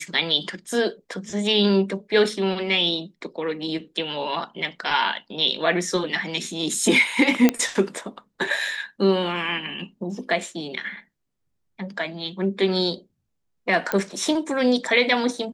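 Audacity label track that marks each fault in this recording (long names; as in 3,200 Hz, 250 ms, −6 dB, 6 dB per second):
7.490000	7.490000	click −4 dBFS
13.920000	13.920000	click −8 dBFS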